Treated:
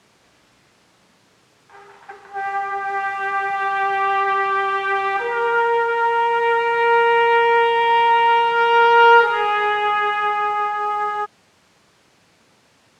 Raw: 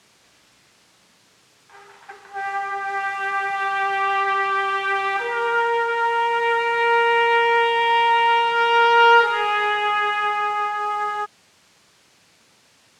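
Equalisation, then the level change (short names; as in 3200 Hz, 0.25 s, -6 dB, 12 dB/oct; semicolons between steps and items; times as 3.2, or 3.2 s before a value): high shelf 2000 Hz -8.5 dB; +4.0 dB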